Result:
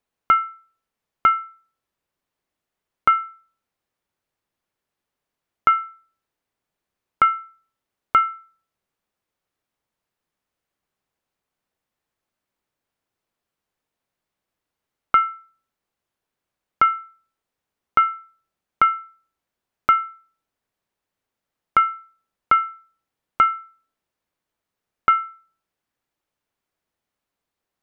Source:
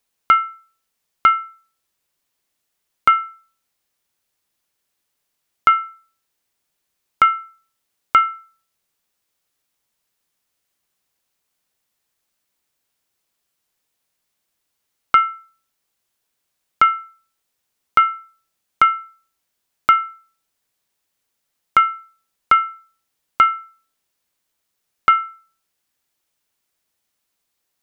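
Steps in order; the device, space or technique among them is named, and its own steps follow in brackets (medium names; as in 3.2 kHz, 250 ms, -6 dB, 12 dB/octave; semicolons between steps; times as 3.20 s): through cloth (treble shelf 2.8 kHz -14.5 dB)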